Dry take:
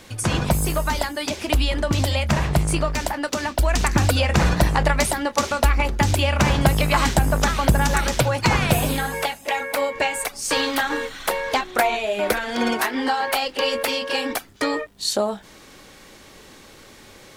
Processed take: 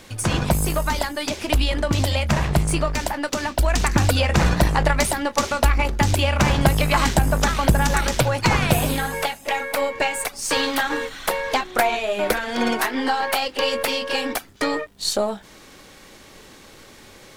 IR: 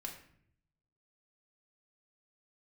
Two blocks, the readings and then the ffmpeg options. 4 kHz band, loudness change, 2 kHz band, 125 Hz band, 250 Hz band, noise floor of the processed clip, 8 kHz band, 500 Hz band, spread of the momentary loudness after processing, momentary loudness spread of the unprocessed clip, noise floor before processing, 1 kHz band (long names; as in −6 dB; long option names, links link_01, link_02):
0.0 dB, 0.0 dB, 0.0 dB, 0.0 dB, 0.0 dB, −46 dBFS, 0.0 dB, 0.0 dB, 6 LU, 6 LU, −46 dBFS, 0.0 dB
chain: -af "aeval=exprs='if(lt(val(0),0),0.708*val(0),val(0))':channel_layout=same,volume=1.5dB"